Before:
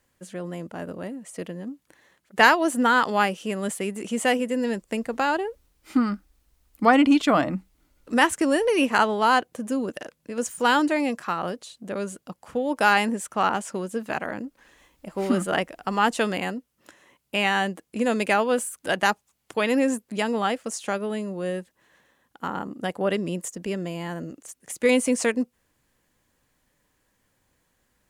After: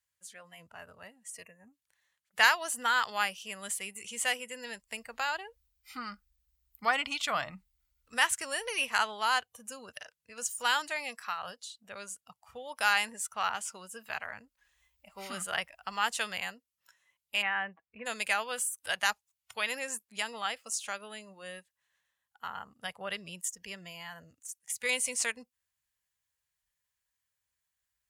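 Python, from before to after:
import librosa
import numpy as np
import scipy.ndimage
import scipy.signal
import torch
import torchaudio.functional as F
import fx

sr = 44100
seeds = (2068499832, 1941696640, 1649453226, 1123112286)

y = fx.spec_erase(x, sr, start_s=1.43, length_s=0.29, low_hz=2800.0, high_hz=5900.0)
y = fx.lowpass(y, sr, hz=2200.0, slope=24, at=(17.41, 18.05), fade=0.02)
y = scipy.signal.sosfilt(scipy.signal.butter(2, 55.0, 'highpass', fs=sr, output='sos'), y)
y = fx.tone_stack(y, sr, knobs='10-0-10')
y = fx.noise_reduce_blind(y, sr, reduce_db=12)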